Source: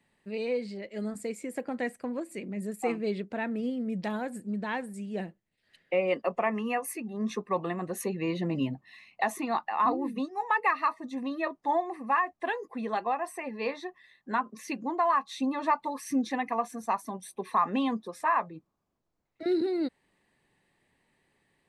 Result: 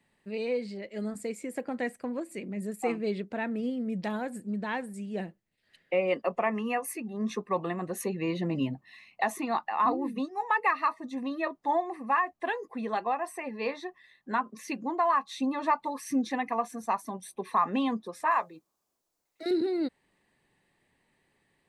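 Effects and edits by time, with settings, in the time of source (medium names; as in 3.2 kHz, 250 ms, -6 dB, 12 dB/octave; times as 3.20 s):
18.31–19.51 s: tone controls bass -13 dB, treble +12 dB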